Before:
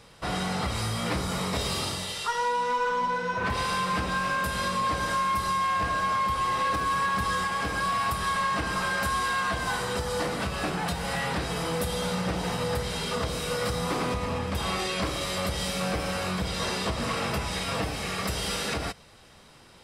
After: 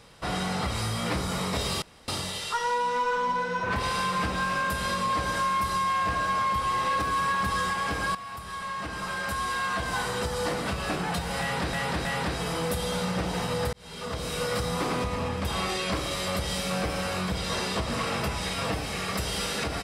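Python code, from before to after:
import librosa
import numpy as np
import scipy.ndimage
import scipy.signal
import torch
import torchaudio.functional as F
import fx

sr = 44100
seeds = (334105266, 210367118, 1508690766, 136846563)

y = fx.edit(x, sr, fx.insert_room_tone(at_s=1.82, length_s=0.26),
    fx.fade_in_from(start_s=7.89, length_s=1.9, floor_db=-14.0),
    fx.repeat(start_s=11.15, length_s=0.32, count=3),
    fx.fade_in_span(start_s=12.83, length_s=0.62), tone=tone)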